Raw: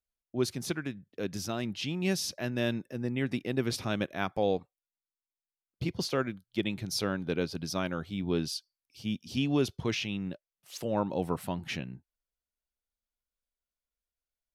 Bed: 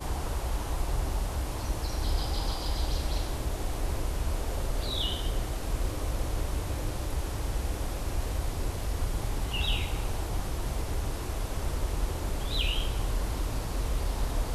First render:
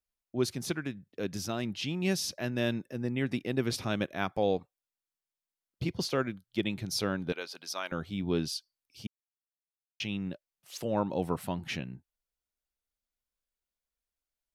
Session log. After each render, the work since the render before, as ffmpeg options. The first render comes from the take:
-filter_complex "[0:a]asettb=1/sr,asplit=3[s0][s1][s2];[s0]atrim=end=7.324[s3];[s1]atrim=start=7.32:end=7.92,asetpts=PTS-STARTPTS,afade=t=in:d=0.004:c=qsin,afade=t=out:st=0.596:d=0.004:c=qsin,highpass=760[s4];[s2]atrim=start=7.916[s5];[s3][s4]acrossfade=d=0.004:c1=hsin:c2=qsin[s6];[s6][s5]acrossfade=d=0.004:c1=qsin:c2=hsin,asplit=3[s7][s8][s9];[s7]atrim=end=9.07,asetpts=PTS-STARTPTS,afade=t=out:st=9.066:d=0.004:c=hsin[s10];[s8]atrim=start=9.07:end=10,asetpts=PTS-STARTPTS,volume=0[s11];[s9]atrim=start=10,asetpts=PTS-STARTPTS,afade=t=in:d=0.004:c=hsin[s12];[s10][s11][s12]concat=n=3:v=0:a=1"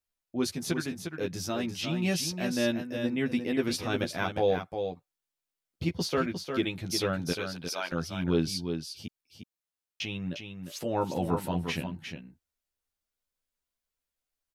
-filter_complex "[0:a]asplit=2[s0][s1];[s1]adelay=12,volume=0.708[s2];[s0][s2]amix=inputs=2:normalize=0,asplit=2[s3][s4];[s4]aecho=0:1:354:0.447[s5];[s3][s5]amix=inputs=2:normalize=0"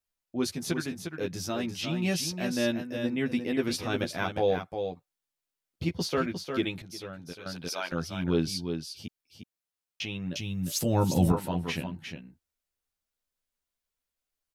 -filter_complex "[0:a]asettb=1/sr,asplit=3[s0][s1][s2];[s0]atrim=end=10.354[s3];[s1]atrim=start=10.35:end=11.32,asetpts=PTS-STARTPTS,afade=t=in:d=0.004:c=qsin,afade=t=out:st=0.966:d=0.004:c=qsin,bass=f=250:g=13,treble=f=4000:g=14[s4];[s2]atrim=start=11.316[s5];[s3][s4]acrossfade=d=0.004:c1=hsin:c2=qsin[s6];[s6][s5]acrossfade=d=0.004:c1=qsin:c2=hsin,asplit=3[s7][s8][s9];[s7]atrim=end=6.822[s10];[s8]atrim=start=6.818:end=7.462,asetpts=PTS-STARTPTS,volume=0.266[s11];[s9]atrim=start=7.458[s12];[s10][s11]acrossfade=d=0.004:c1=hsin:c2=hsin[s13];[s13][s12]acrossfade=d=0.004:c1=hsin:c2=hsin"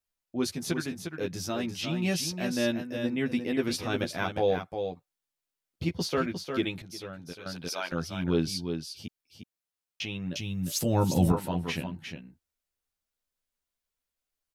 -af anull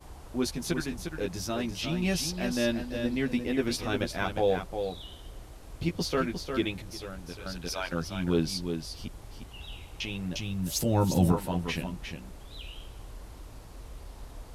-filter_complex "[1:a]volume=0.188[s0];[0:a][s0]amix=inputs=2:normalize=0"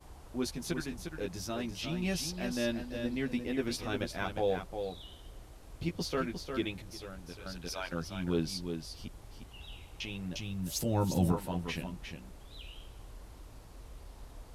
-af "volume=0.562"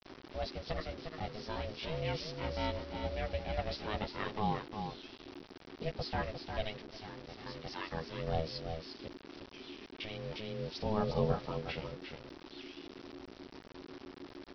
-af "aresample=11025,acrusher=bits=7:mix=0:aa=0.000001,aresample=44100,aeval=exprs='val(0)*sin(2*PI*320*n/s)':c=same"

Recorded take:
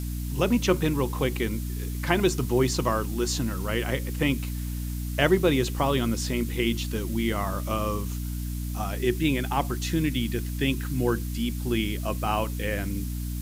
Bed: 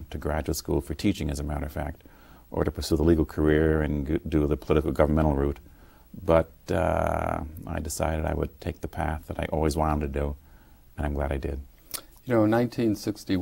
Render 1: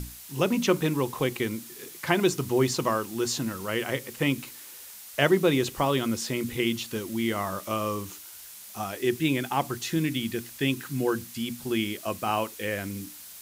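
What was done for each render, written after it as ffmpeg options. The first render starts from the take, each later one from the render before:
-af "bandreject=f=60:t=h:w=6,bandreject=f=120:t=h:w=6,bandreject=f=180:t=h:w=6,bandreject=f=240:t=h:w=6,bandreject=f=300:t=h:w=6"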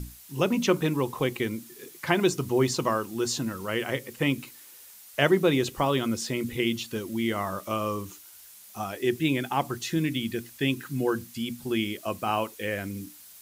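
-af "afftdn=nr=6:nf=-45"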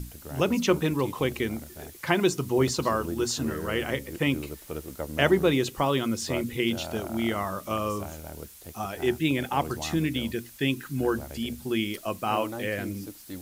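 -filter_complex "[1:a]volume=0.211[s0];[0:a][s0]amix=inputs=2:normalize=0"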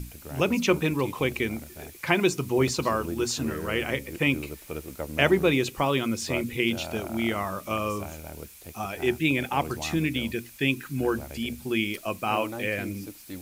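-af "equalizer=f=2400:w=6:g=8.5"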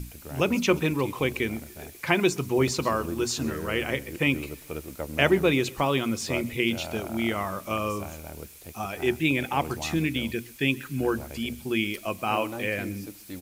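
-af "aecho=1:1:130|260|390:0.0708|0.0276|0.0108"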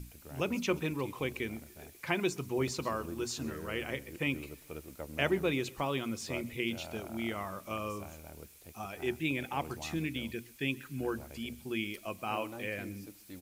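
-af "volume=0.355"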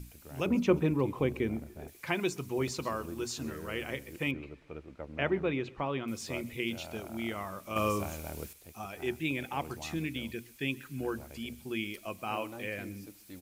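-filter_complex "[0:a]asettb=1/sr,asplit=3[s0][s1][s2];[s0]atrim=end=0.464[s3];[s1]atrim=start=0.46:end=1.88,asetpts=PTS-STARTPTS,afade=t=in:d=0.004:c=qsin,afade=t=out:st=1.416:d=0.004:c=qsin,tiltshelf=f=1500:g=7.5[s4];[s2]atrim=start=1.876[s5];[s3][s4]acrossfade=d=0.004:c1=hsin:c2=qsin[s6];[s6][s5]acrossfade=d=0.004:c1=qsin:c2=hsin,asettb=1/sr,asplit=3[s7][s8][s9];[s7]atrim=end=4.314[s10];[s8]atrim=start=4.31:end=6.08,asetpts=PTS-STARTPTS,afade=t=in:d=0.004:c=qsin,afade=t=out:st=1.766:d=0.004:c=qsin,lowpass=2500[s11];[s9]atrim=start=6.076[s12];[s10][s11]acrossfade=d=0.004:c1=hsin:c2=qsin[s13];[s13][s12]acrossfade=d=0.004:c1=qsin:c2=hsin,asplit=3[s14][s15][s16];[s14]atrim=end=7.762[s17];[s15]atrim=start=7.758:end=8.532,asetpts=PTS-STARTPTS,volume=2.66[s18];[s16]atrim=start=8.528[s19];[s17][s18]acrossfade=d=0.004:c1=hsin:c2=hsin[s20];[s20][s19]acrossfade=d=0.004:c1=hsin:c2=hsin"

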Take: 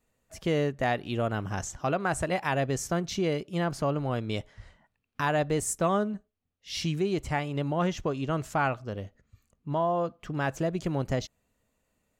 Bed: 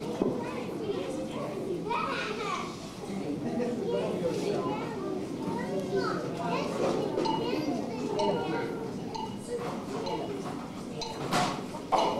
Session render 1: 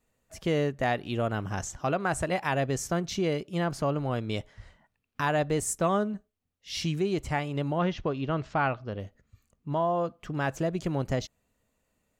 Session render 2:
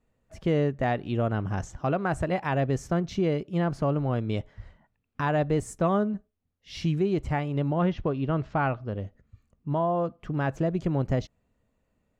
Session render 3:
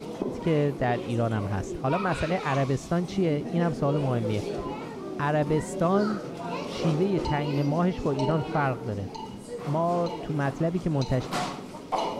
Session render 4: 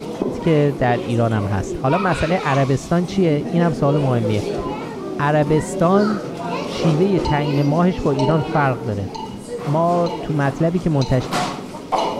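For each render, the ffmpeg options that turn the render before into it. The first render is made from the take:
-filter_complex "[0:a]asettb=1/sr,asplit=3[s0][s1][s2];[s0]atrim=end=7.784[s3];[s1]atrim=start=7.78:end=9,asetpts=PTS-STARTPTS,afade=t=in:d=0.004:c=qsin,afade=t=out:st=1.216:d=0.004:c=qsin,lowpass=f=4700:w=0.5412,lowpass=f=4700:w=1.3066[s4];[s2]atrim=start=8.996[s5];[s3][s4]acrossfade=d=0.004:c1=hsin:c2=qsin[s6];[s6][s5]acrossfade=d=0.004:c1=qsin:c2=hsin"
-af "lowpass=f=2200:p=1,lowshelf=f=340:g=5"
-filter_complex "[1:a]volume=0.794[s0];[0:a][s0]amix=inputs=2:normalize=0"
-af "volume=2.66"

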